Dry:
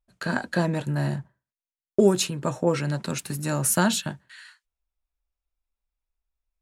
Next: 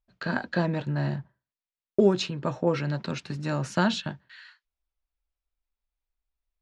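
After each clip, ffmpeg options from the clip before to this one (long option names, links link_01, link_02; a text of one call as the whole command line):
ffmpeg -i in.wav -af "lowpass=frequency=5000:width=0.5412,lowpass=frequency=5000:width=1.3066,volume=-2dB" out.wav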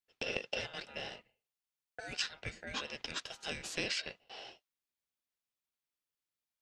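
ffmpeg -i in.wav -filter_complex "[0:a]highpass=1100,acrossover=split=1400|5100[link_01][link_02][link_03];[link_01]acompressor=threshold=-47dB:ratio=4[link_04];[link_02]acompressor=threshold=-35dB:ratio=4[link_05];[link_03]acompressor=threshold=-46dB:ratio=4[link_06];[link_04][link_05][link_06]amix=inputs=3:normalize=0,aeval=exprs='val(0)*sin(2*PI*1100*n/s)':channel_layout=same,volume=3.5dB" out.wav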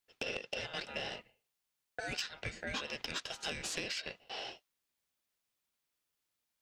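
ffmpeg -i in.wav -af "acompressor=threshold=-40dB:ratio=12,asoftclip=type=tanh:threshold=-31dB,volume=6.5dB" out.wav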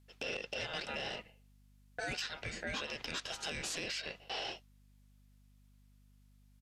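ffmpeg -i in.wav -af "alimiter=level_in=11dB:limit=-24dB:level=0:latency=1:release=51,volume=-11dB,aeval=exprs='val(0)+0.000355*(sin(2*PI*50*n/s)+sin(2*PI*2*50*n/s)/2+sin(2*PI*3*50*n/s)/3+sin(2*PI*4*50*n/s)/4+sin(2*PI*5*50*n/s)/5)':channel_layout=same,aresample=32000,aresample=44100,volume=6dB" out.wav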